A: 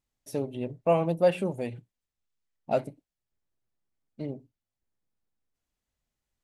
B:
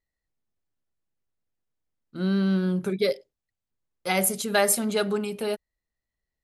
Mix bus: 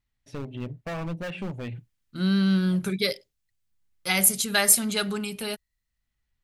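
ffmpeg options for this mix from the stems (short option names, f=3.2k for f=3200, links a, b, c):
-filter_complex "[0:a]lowpass=2.8k,alimiter=limit=-19.5dB:level=0:latency=1:release=181,volume=27dB,asoftclip=hard,volume=-27dB,volume=1.5dB[a];[1:a]dynaudnorm=f=420:g=5:m=8.5dB,volume=-7dB,asplit=2[b][c];[c]apad=whole_len=283939[d];[a][d]sidechaincompress=threshold=-40dB:ratio=8:attack=16:release=566[e];[e][b]amix=inputs=2:normalize=0,equalizer=f=500:t=o:w=2.6:g=-13.5,acontrast=73"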